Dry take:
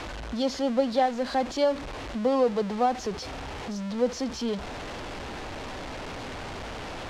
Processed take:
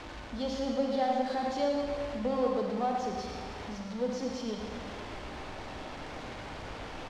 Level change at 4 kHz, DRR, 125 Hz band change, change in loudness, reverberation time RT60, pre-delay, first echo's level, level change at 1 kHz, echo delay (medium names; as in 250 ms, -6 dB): -6.0 dB, -0.5 dB, -4.5 dB, -5.0 dB, 1.7 s, 32 ms, -6.0 dB, -4.5 dB, 113 ms